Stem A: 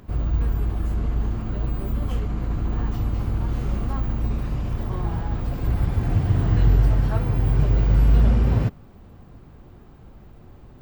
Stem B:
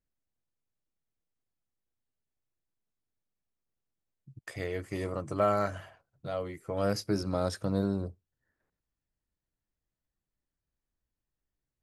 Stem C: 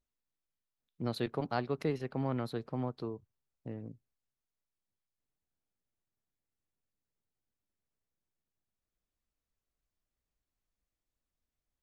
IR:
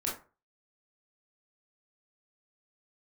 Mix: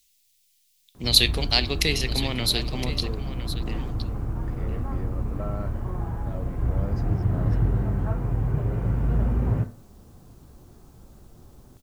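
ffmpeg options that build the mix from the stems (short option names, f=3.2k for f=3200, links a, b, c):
-filter_complex "[0:a]lowpass=1.7k,adelay=950,volume=-6dB,asplit=2[a][b];[b]volume=-10.5dB[c];[1:a]aemphasis=mode=reproduction:type=riaa,alimiter=limit=-16.5dB:level=0:latency=1,volume=-9dB[d];[2:a]aexciter=amount=8.6:drive=9:freq=2.1k,volume=2.5dB,asplit=3[e][f][g];[f]volume=-18.5dB[h];[g]volume=-12dB[i];[3:a]atrim=start_sample=2205[j];[c][h]amix=inputs=2:normalize=0[k];[k][j]afir=irnorm=-1:irlink=0[l];[i]aecho=0:1:1015:1[m];[a][d][e][l][m]amix=inputs=5:normalize=0"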